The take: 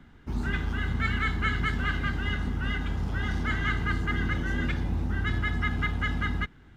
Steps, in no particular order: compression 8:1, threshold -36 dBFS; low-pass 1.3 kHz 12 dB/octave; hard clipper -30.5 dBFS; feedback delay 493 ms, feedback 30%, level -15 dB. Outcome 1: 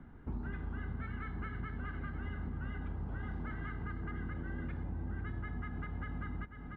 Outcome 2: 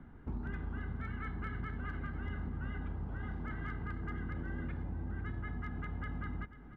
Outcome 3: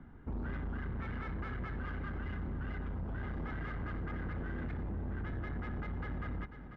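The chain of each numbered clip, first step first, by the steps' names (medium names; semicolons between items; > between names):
feedback delay > compression > hard clipper > low-pass; low-pass > compression > hard clipper > feedback delay; hard clipper > feedback delay > compression > low-pass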